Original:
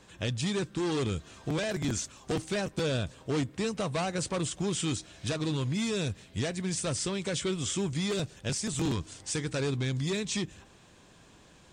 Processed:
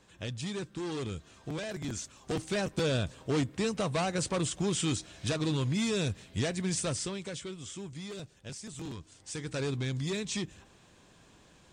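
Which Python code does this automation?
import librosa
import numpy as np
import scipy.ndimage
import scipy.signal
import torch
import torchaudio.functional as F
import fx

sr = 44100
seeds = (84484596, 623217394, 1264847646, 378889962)

y = fx.gain(x, sr, db=fx.line((1.91, -6.0), (2.65, 0.5), (6.79, 0.5), (7.55, -11.0), (9.11, -11.0), (9.59, -2.5)))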